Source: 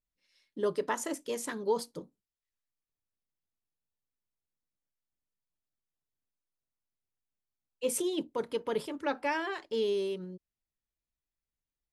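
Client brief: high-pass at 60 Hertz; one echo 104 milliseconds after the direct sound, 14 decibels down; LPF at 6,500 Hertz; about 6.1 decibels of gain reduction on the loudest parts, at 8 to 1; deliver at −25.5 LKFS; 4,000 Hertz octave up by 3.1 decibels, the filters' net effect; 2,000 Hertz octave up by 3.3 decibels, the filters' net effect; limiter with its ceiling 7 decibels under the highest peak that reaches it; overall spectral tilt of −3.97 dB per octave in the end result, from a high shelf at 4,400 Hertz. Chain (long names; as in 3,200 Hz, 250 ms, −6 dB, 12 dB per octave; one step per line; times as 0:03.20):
high-pass filter 60 Hz
low-pass filter 6,500 Hz
parametric band 2,000 Hz +4 dB
parametric band 4,000 Hz +6.5 dB
high-shelf EQ 4,400 Hz −7 dB
downward compressor 8 to 1, threshold −31 dBFS
brickwall limiter −28 dBFS
single-tap delay 104 ms −14 dB
level +13.5 dB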